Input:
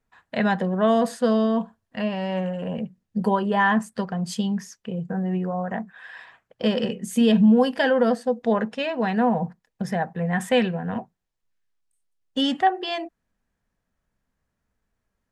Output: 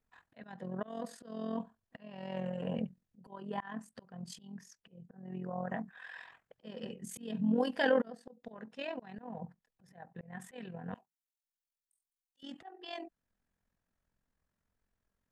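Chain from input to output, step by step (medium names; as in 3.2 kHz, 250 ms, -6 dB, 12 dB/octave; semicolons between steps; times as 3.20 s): AM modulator 43 Hz, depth 50%; slow attack 770 ms; 10.94–12.43 s: pre-emphasis filter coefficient 0.97; trim -4 dB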